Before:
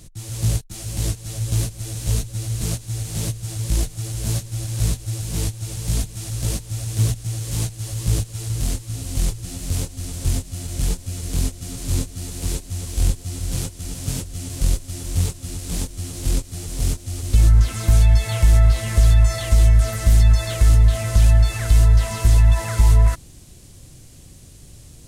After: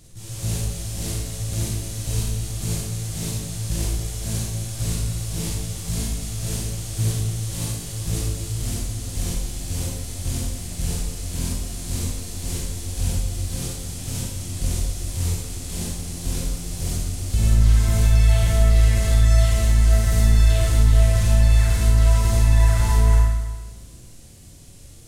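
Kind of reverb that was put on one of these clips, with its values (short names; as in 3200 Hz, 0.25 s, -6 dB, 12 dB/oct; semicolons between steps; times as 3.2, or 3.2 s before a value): Schroeder reverb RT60 1.3 s, combs from 32 ms, DRR -4.5 dB; gain -6 dB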